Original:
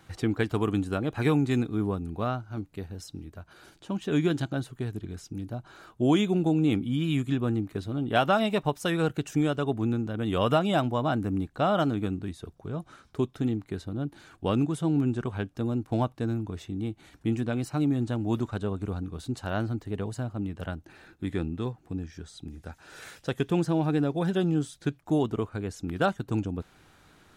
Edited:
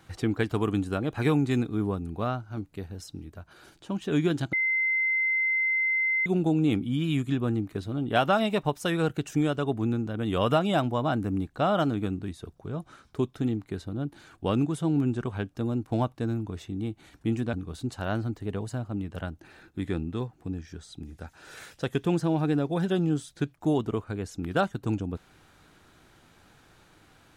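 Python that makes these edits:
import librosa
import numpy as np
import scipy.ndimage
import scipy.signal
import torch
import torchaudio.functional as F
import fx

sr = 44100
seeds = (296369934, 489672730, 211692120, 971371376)

y = fx.edit(x, sr, fx.bleep(start_s=4.53, length_s=1.73, hz=2070.0, db=-22.5),
    fx.cut(start_s=17.53, length_s=1.45), tone=tone)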